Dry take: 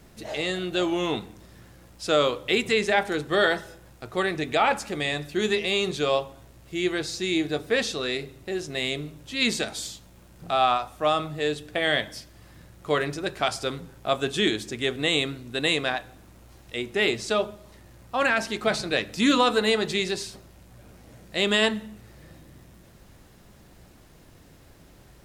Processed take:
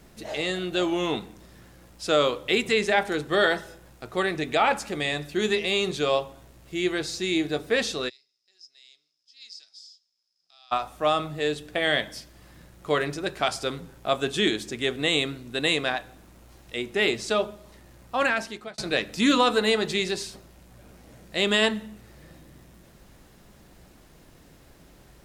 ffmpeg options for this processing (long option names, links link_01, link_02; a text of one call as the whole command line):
ffmpeg -i in.wav -filter_complex "[0:a]asplit=3[link_01][link_02][link_03];[link_01]afade=type=out:start_time=8.08:duration=0.02[link_04];[link_02]bandpass=frequency=5100:width_type=q:width=18,afade=type=in:start_time=8.08:duration=0.02,afade=type=out:start_time=10.71:duration=0.02[link_05];[link_03]afade=type=in:start_time=10.71:duration=0.02[link_06];[link_04][link_05][link_06]amix=inputs=3:normalize=0,asplit=2[link_07][link_08];[link_07]atrim=end=18.78,asetpts=PTS-STARTPTS,afade=type=out:start_time=18.22:duration=0.56[link_09];[link_08]atrim=start=18.78,asetpts=PTS-STARTPTS,afade=type=in:duration=0.004:curve=hsin[link_10];[link_09][link_10]concat=n=2:v=0:a=1,equalizer=frequency=100:width_type=o:width=0.39:gain=-7.5" out.wav